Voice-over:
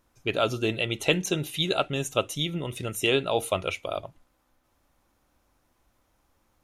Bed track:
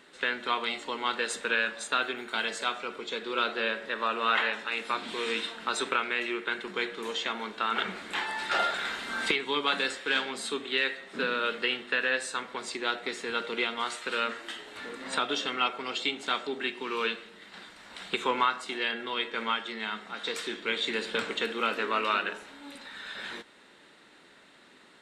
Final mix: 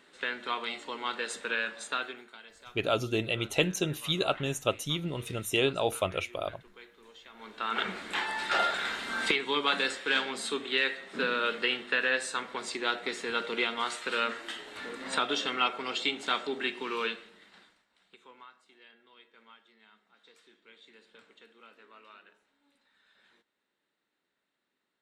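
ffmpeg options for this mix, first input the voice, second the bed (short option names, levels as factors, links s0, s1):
-filter_complex "[0:a]adelay=2500,volume=0.708[s0];[1:a]volume=6.68,afade=t=out:st=1.91:d=0.47:silence=0.149624,afade=t=in:st=7.32:d=0.55:silence=0.0944061,afade=t=out:st=16.78:d=1.08:silence=0.0473151[s1];[s0][s1]amix=inputs=2:normalize=0"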